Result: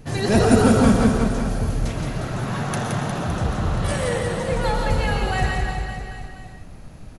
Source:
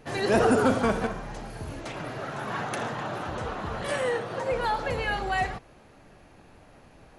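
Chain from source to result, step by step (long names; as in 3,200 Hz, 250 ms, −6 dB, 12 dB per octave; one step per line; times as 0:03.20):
bass and treble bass +14 dB, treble +8 dB
reverse bouncing-ball delay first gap 170 ms, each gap 1.1×, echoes 5
convolution reverb RT60 0.40 s, pre-delay 85 ms, DRR 6.5 dB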